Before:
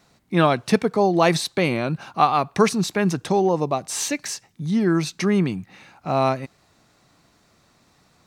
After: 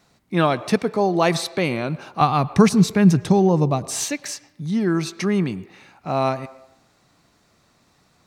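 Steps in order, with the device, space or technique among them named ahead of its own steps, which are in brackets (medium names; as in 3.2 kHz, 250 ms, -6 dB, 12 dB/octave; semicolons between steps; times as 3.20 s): filtered reverb send (on a send: high-pass 260 Hz 24 dB/octave + low-pass 3.8 kHz + reverberation RT60 0.80 s, pre-delay 97 ms, DRR 17 dB); 2.21–4.05 s: on the sum: tone controls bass +13 dB, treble +2 dB; trim -1 dB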